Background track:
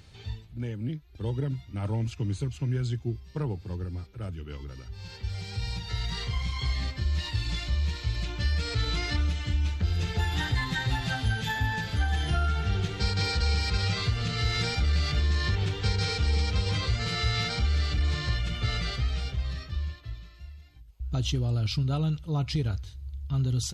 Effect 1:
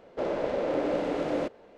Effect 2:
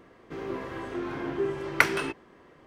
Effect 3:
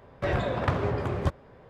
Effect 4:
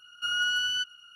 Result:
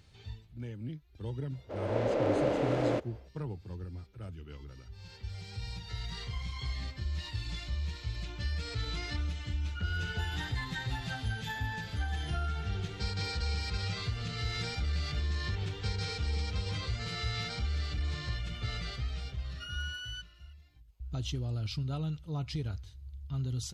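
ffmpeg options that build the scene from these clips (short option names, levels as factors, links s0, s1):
-filter_complex "[4:a]asplit=2[s0][s1];[0:a]volume=0.422[s2];[1:a]dynaudnorm=f=230:g=3:m=3.98[s3];[s0]lowpass=1800[s4];[s3]atrim=end=1.77,asetpts=PTS-STARTPTS,volume=0.237,afade=t=in:d=0.004:c=hsin,afade=t=out:st=1.766:d=0.004:c=hsin,adelay=1520[s5];[s4]atrim=end=1.15,asetpts=PTS-STARTPTS,volume=0.316,afade=t=in:d=0.004:c=hsin,afade=t=out:st=1.146:d=0.004:c=hsin,adelay=9530[s6];[s1]atrim=end=1.15,asetpts=PTS-STARTPTS,volume=0.2,afade=t=in:d=0.004:c=hsin,afade=t=out:st=1.146:d=0.004:c=hsin,adelay=19380[s7];[s2][s5][s6][s7]amix=inputs=4:normalize=0"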